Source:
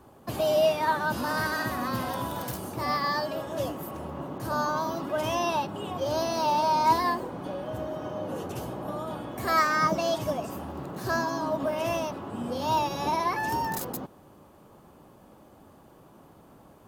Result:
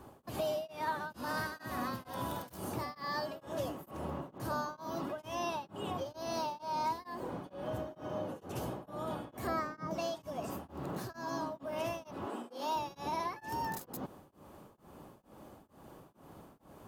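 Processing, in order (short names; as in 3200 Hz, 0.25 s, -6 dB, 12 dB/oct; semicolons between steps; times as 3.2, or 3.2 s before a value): 9.47–9.91 tilt shelf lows +8.5 dB, about 940 Hz; 12.26–12.76 HPF 270 Hz 24 dB/oct; compressor 3:1, threshold -36 dBFS, peak gain reduction 14 dB; beating tremolo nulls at 2.2 Hz; gain +1 dB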